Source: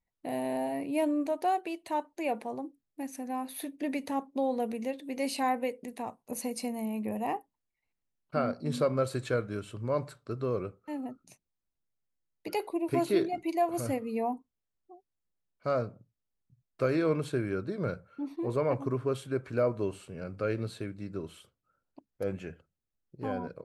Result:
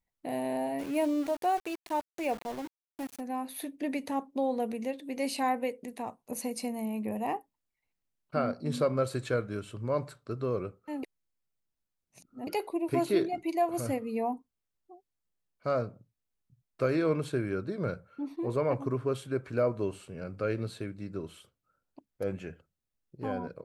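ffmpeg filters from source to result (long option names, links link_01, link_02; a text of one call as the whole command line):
ffmpeg -i in.wav -filter_complex "[0:a]asplit=3[link_01][link_02][link_03];[link_01]afade=type=out:start_time=0.78:duration=0.02[link_04];[link_02]aeval=exprs='val(0)*gte(abs(val(0)),0.00944)':channel_layout=same,afade=type=in:start_time=0.78:duration=0.02,afade=type=out:start_time=3.19:duration=0.02[link_05];[link_03]afade=type=in:start_time=3.19:duration=0.02[link_06];[link_04][link_05][link_06]amix=inputs=3:normalize=0,asplit=3[link_07][link_08][link_09];[link_07]atrim=end=11.032[link_10];[link_08]atrim=start=11.028:end=12.472,asetpts=PTS-STARTPTS,areverse[link_11];[link_09]atrim=start=12.468[link_12];[link_10][link_11]acrossfade=duration=0.004:curve1=hsin:curve2=hsin[link_13];[link_13][link_12]acrossfade=duration=0.004:curve1=hsin:curve2=hsin" out.wav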